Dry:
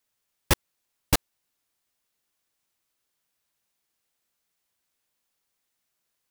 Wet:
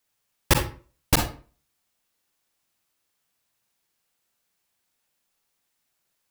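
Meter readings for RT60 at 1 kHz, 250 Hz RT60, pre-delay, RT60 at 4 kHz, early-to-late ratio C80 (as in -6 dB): 0.40 s, 0.45 s, 38 ms, 0.30 s, 13.0 dB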